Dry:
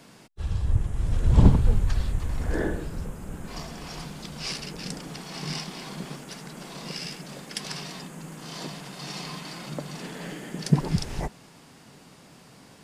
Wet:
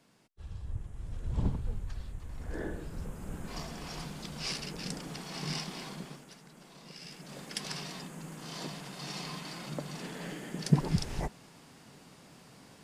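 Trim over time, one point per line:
2.21 s -15 dB
3.28 s -3.5 dB
5.82 s -3.5 dB
6.40 s -14 dB
6.96 s -14 dB
7.41 s -4 dB

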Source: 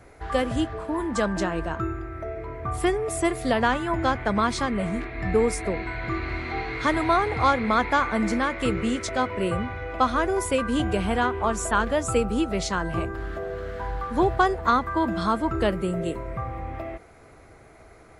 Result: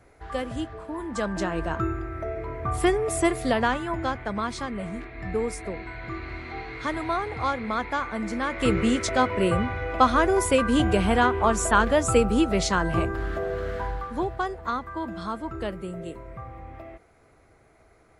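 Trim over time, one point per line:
1.00 s -6 dB
1.76 s +1.5 dB
3.24 s +1.5 dB
4.29 s -6 dB
8.31 s -6 dB
8.71 s +3 dB
13.75 s +3 dB
14.30 s -8 dB

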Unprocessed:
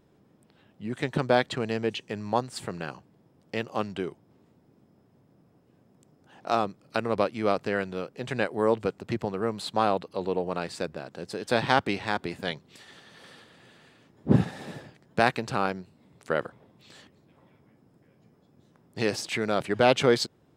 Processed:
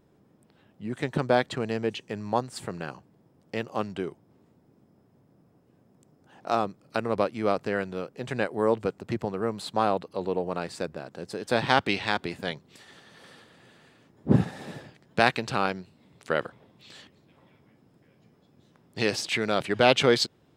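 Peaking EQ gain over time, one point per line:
peaking EQ 3.3 kHz 1.6 oct
11.49 s -2.5 dB
12.00 s +8.5 dB
12.51 s -2 dB
14.50 s -2 dB
15.19 s +5 dB

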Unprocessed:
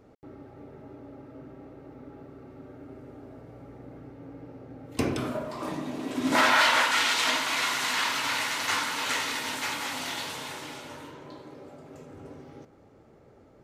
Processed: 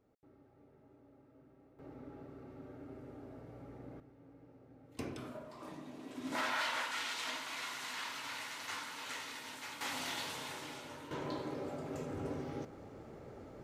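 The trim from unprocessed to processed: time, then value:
-17.5 dB
from 1.79 s -5 dB
from 4.00 s -15 dB
from 9.81 s -6.5 dB
from 11.11 s +4.5 dB

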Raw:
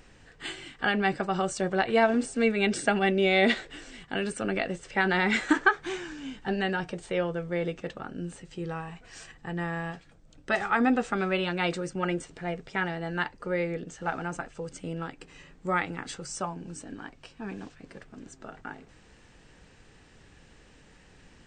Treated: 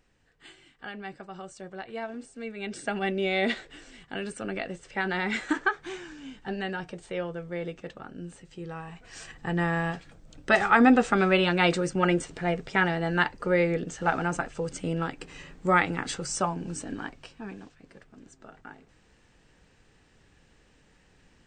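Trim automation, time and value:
2.45 s -13.5 dB
3.02 s -4 dB
8.70 s -4 dB
9.46 s +5.5 dB
17.05 s +5.5 dB
17.66 s -5.5 dB

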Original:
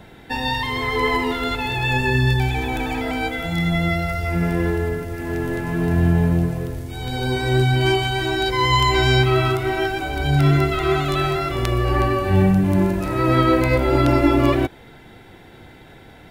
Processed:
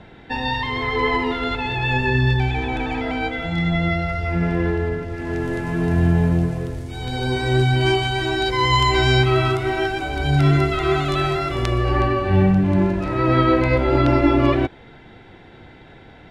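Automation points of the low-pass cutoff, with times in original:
5.01 s 4.1 kHz
5.55 s 8.6 kHz
11.58 s 8.6 kHz
12.15 s 4.3 kHz

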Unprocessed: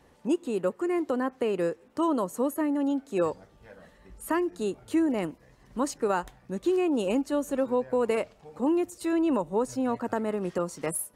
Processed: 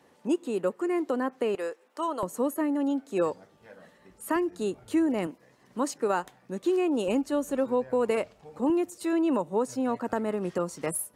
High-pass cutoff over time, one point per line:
170 Hz
from 1.55 s 570 Hz
from 2.23 s 150 Hz
from 4.36 s 54 Hz
from 5.27 s 180 Hz
from 7.08 s 48 Hz
from 8.70 s 140 Hz
from 10.13 s 58 Hz

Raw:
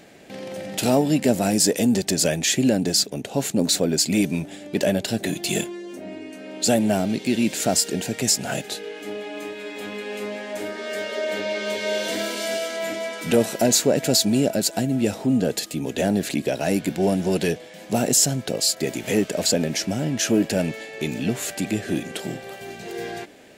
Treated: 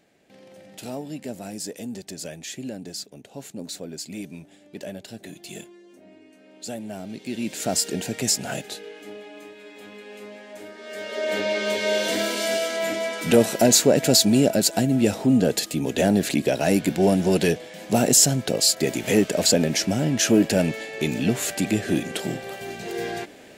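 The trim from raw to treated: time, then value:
6.90 s -14.5 dB
7.84 s -2 dB
8.39 s -2 dB
9.49 s -10 dB
10.78 s -10 dB
11.35 s +2 dB

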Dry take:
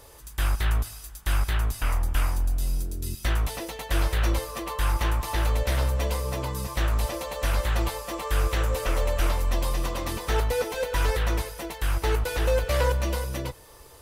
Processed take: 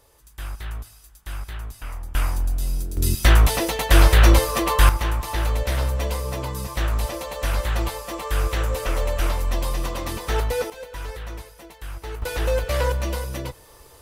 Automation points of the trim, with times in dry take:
-8 dB
from 2.15 s +2 dB
from 2.97 s +11 dB
from 4.89 s +1.5 dB
from 10.70 s -9 dB
from 12.22 s +1 dB

